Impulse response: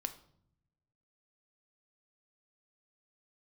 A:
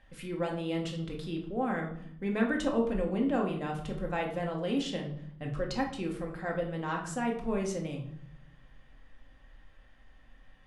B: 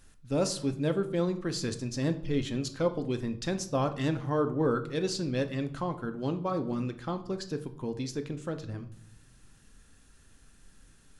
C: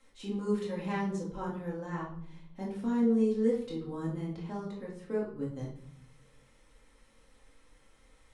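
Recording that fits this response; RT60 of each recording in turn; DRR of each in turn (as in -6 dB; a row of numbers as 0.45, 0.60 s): B; 0.65 s, not exponential, 0.65 s; 0.0, 8.0, -5.0 dB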